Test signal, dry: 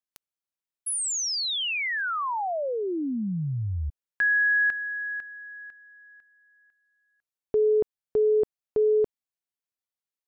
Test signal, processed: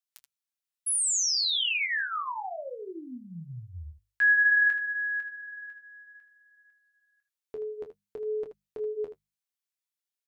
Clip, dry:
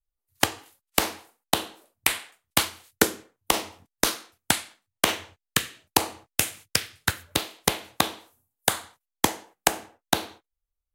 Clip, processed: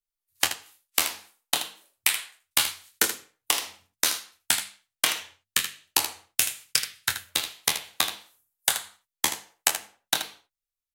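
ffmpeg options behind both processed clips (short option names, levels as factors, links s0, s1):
-filter_complex "[0:a]tiltshelf=f=970:g=-8,bandreject=f=50:t=h:w=6,bandreject=f=100:t=h:w=6,bandreject=f=150:t=h:w=6,bandreject=f=200:t=h:w=6,flanger=delay=6.4:depth=6.8:regen=-28:speed=0.59:shape=sinusoidal,asplit=2[s0][s1];[s1]aecho=0:1:24|79:0.376|0.299[s2];[s0][s2]amix=inputs=2:normalize=0,volume=0.708"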